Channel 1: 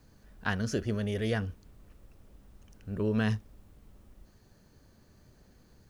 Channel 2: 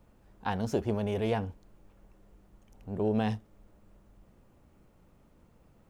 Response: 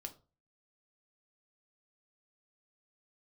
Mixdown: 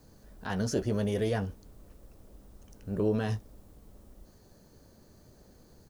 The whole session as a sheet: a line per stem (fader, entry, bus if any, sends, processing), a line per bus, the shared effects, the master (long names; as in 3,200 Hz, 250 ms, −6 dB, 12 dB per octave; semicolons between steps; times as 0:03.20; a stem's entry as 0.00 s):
+1.0 dB, 0.00 s, no send, high-shelf EQ 3,200 Hz +10.5 dB; brickwall limiter −23 dBFS, peak gain reduction 11 dB; drawn EQ curve 120 Hz 0 dB, 550 Hz +5 dB, 2,600 Hz −8 dB, 4,100 Hz −5 dB
−8.5 dB, 16 ms, no send, no processing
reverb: not used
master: no processing